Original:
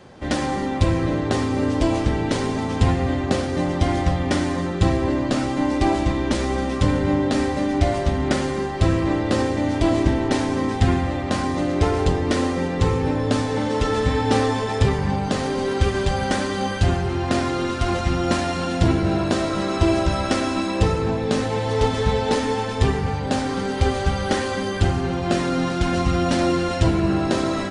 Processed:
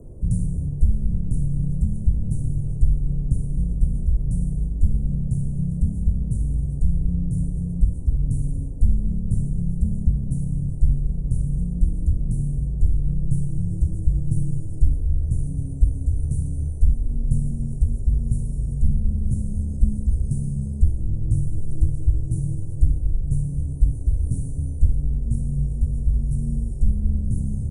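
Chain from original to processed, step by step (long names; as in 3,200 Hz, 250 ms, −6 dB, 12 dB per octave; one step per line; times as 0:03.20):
inverse Chebyshev band-stop filter 680–4,500 Hz, stop band 60 dB
frequency shifter −120 Hz
speech leveller 0.5 s
noise in a band 65–490 Hz −55 dBFS
level +5 dB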